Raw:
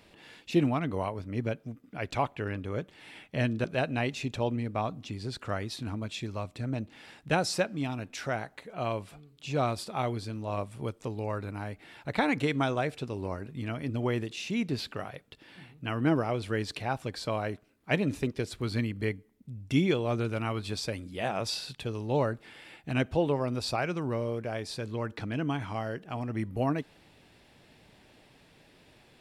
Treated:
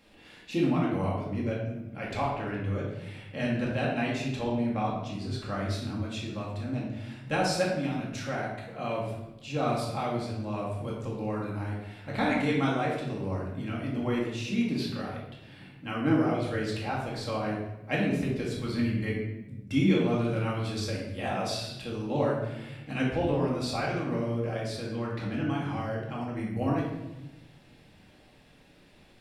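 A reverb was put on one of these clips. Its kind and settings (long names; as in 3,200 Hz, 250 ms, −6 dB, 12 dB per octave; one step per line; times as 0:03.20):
rectangular room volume 420 cubic metres, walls mixed, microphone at 2.2 metres
level −5.5 dB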